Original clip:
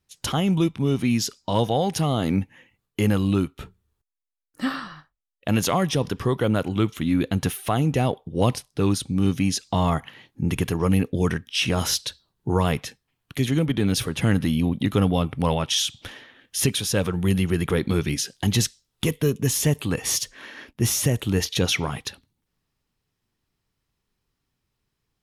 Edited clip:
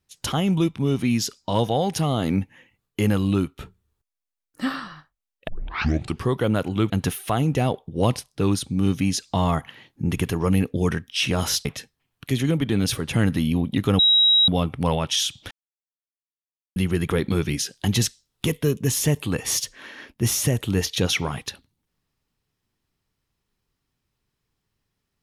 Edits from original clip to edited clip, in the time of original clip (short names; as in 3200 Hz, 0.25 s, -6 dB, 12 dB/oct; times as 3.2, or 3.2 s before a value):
5.48 tape start 0.76 s
6.9–7.29 cut
12.04–12.73 cut
15.07 add tone 3840 Hz -13 dBFS 0.49 s
16.1–17.35 mute